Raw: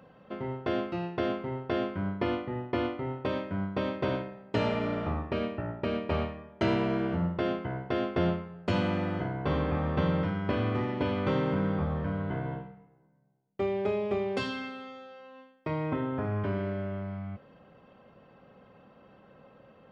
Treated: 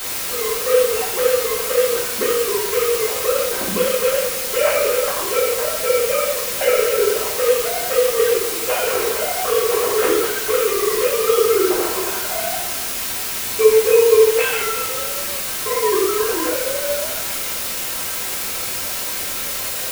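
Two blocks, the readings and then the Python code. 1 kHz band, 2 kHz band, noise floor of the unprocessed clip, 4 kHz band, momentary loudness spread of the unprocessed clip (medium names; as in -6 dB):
+11.0 dB, +15.0 dB, -59 dBFS, +19.5 dB, 9 LU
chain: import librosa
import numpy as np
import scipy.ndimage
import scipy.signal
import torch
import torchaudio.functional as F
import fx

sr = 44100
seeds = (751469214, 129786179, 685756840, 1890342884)

y = fx.sine_speech(x, sr)
y = fx.quant_dither(y, sr, seeds[0], bits=6, dither='triangular')
y = fx.rev_double_slope(y, sr, seeds[1], early_s=0.53, late_s=2.4, knee_db=-17, drr_db=-6.5)
y = y * librosa.db_to_amplitude(4.5)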